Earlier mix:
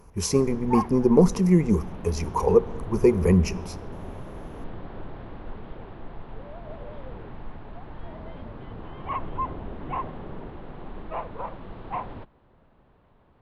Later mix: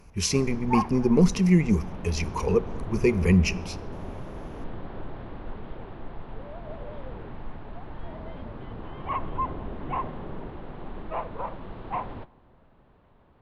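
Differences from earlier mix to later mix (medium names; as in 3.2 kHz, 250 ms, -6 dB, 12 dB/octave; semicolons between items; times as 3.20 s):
speech: add FFT filter 190 Hz 0 dB, 810 Hz -9 dB, 2.7 kHz +10 dB, 11 kHz -4 dB; background: send on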